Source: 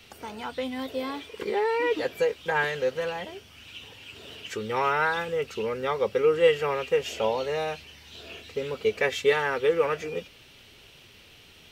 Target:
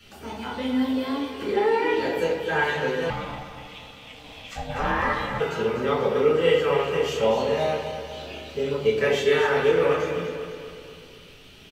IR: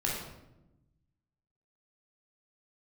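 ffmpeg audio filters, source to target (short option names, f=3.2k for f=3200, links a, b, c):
-filter_complex "[0:a]aecho=1:1:247|494|741|988|1235|1482:0.355|0.188|0.0997|0.0528|0.028|0.0148[a];[1:a]atrim=start_sample=2205,asetrate=74970,aresample=44100[b];[a][b]afir=irnorm=-1:irlink=0,asettb=1/sr,asplit=3[c][d][e];[c]atrim=end=3.104[f];[d]atrim=start=3.1:end=5.4,asetpts=PTS-STARTPTS,afade=t=in:d=0.004:c=qsin,afade=t=out:st=2.296:d=0.004:c=qsin,aeval=exprs='val(0)*sin(2*PI*370*n/s)':c=same[g];[e]atrim=start=5.396[h];[f][g]acrossfade=d=0.004:c1=hsin:c2=qsin[i];[i][h]acrossfade=d=0.004:c1=qsin:c2=hsin"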